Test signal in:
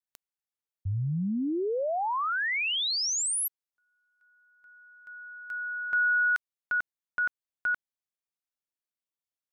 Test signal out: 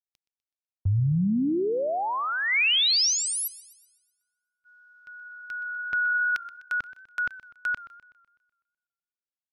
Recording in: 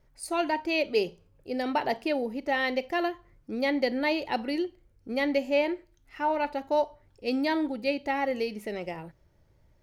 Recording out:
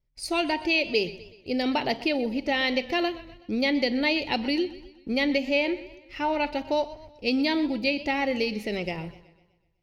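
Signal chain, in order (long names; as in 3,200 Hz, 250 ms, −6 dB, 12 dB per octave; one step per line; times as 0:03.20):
flat-topped bell 3,600 Hz +10.5 dB
noise gate −55 dBFS, range −22 dB
low-shelf EQ 320 Hz +10.5 dB
downward compressor 2 to 1, threshold −23 dBFS
feedback echo with a swinging delay time 125 ms, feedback 49%, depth 90 cents, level −17 dB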